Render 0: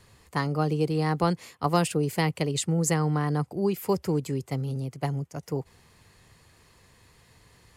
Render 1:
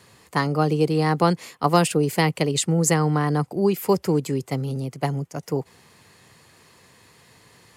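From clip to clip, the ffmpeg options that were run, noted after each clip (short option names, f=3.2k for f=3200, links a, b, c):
-af "highpass=140,volume=6dB"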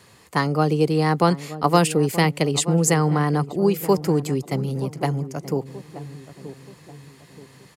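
-filter_complex "[0:a]asplit=2[a][b];[b]adelay=928,lowpass=f=870:p=1,volume=-13dB,asplit=2[c][d];[d]adelay=928,lowpass=f=870:p=1,volume=0.46,asplit=2[e][f];[f]adelay=928,lowpass=f=870:p=1,volume=0.46,asplit=2[g][h];[h]adelay=928,lowpass=f=870:p=1,volume=0.46,asplit=2[i][j];[j]adelay=928,lowpass=f=870:p=1,volume=0.46[k];[a][c][e][g][i][k]amix=inputs=6:normalize=0,volume=1dB"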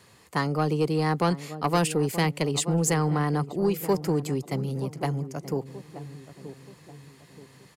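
-af "asoftclip=type=tanh:threshold=-10.5dB,volume=-4dB"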